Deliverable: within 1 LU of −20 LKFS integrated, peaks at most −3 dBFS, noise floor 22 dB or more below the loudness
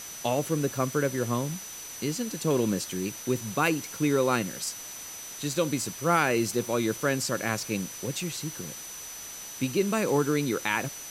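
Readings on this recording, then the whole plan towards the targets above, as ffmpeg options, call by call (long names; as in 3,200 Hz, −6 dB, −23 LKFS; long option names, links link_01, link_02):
interfering tone 6,000 Hz; level of the tone −41 dBFS; background noise floor −41 dBFS; target noise floor −51 dBFS; integrated loudness −28.5 LKFS; sample peak −10.0 dBFS; target loudness −20.0 LKFS
→ -af "bandreject=frequency=6000:width=30"
-af "afftdn=noise_reduction=10:noise_floor=-41"
-af "volume=8.5dB,alimiter=limit=-3dB:level=0:latency=1"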